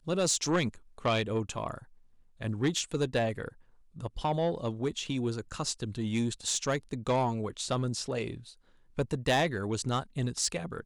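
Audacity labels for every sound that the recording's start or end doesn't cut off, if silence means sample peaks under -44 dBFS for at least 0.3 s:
2.400000	3.490000	sound
3.960000	8.520000	sound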